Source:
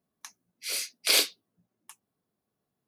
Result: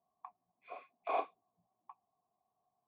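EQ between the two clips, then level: cascade formant filter a; bass shelf 180 Hz +7 dB; band-stop 540 Hz, Q 12; +13.0 dB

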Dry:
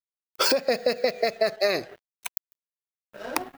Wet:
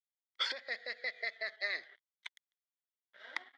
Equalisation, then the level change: two resonant band-passes 2.6 kHz, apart 0.73 oct; distance through air 75 m; 0.0 dB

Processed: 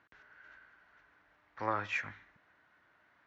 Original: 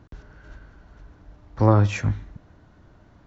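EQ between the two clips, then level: band-pass filter 1.9 kHz, Q 2; 0.0 dB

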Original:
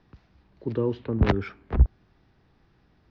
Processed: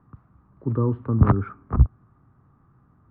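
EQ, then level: resonant low-pass 1.2 kHz, resonance Q 6.6; peaking EQ 120 Hz +14.5 dB 1.6 oct; peaking EQ 260 Hz +6 dB 0.33 oct; -5.5 dB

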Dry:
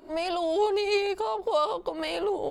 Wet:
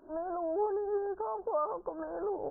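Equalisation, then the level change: brick-wall FIR low-pass 1.7 kHz; -6.5 dB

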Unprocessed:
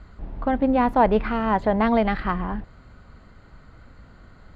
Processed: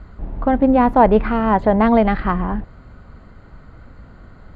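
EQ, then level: treble shelf 2.1 kHz -8.5 dB; +6.5 dB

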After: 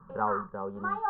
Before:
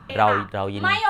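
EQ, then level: low-pass 1.4 kHz 24 dB/octave; static phaser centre 450 Hz, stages 8; -6.0 dB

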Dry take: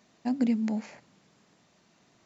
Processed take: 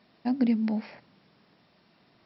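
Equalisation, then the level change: brick-wall FIR low-pass 5.6 kHz; +1.5 dB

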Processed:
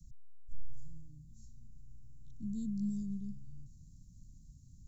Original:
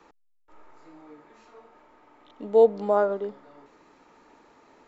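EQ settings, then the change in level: inverse Chebyshev band-stop 470–2000 Hz, stop band 70 dB; tone controls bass +11 dB, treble +5 dB; treble shelf 2.7 kHz -10.5 dB; +10.0 dB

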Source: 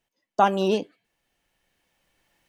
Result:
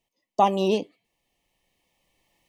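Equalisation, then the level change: Butterworth band-stop 1.5 kHz, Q 2.3; 0.0 dB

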